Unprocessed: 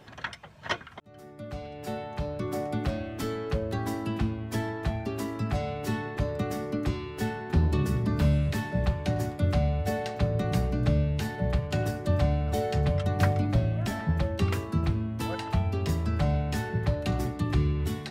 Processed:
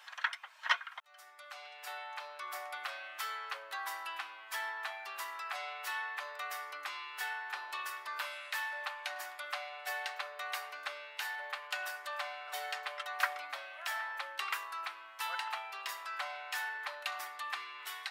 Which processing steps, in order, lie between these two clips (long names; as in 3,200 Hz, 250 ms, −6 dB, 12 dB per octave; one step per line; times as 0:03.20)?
dynamic equaliser 6,700 Hz, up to −7 dB, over −56 dBFS, Q 0.72
inverse Chebyshev high-pass filter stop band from 170 Hz, stop band 80 dB
level +3 dB